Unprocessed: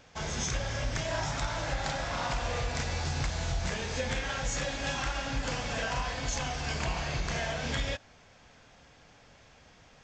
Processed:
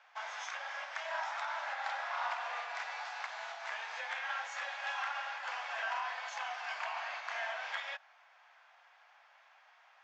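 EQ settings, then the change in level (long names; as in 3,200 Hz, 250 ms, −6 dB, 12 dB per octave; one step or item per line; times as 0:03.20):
Butterworth high-pass 710 Hz 36 dB per octave
low-pass filter 1,600 Hz 12 dB per octave
spectral tilt +3 dB per octave
0.0 dB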